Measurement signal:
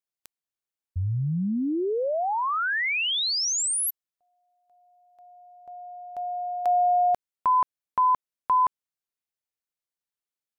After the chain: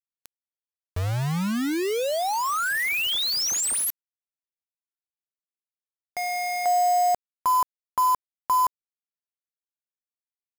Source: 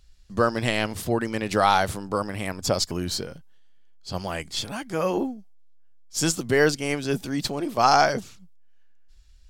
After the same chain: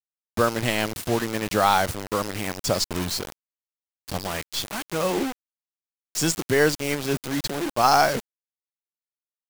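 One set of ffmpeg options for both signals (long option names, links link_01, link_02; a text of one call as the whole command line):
ffmpeg -i in.wav -af "acrusher=bits=4:mix=0:aa=0.000001" out.wav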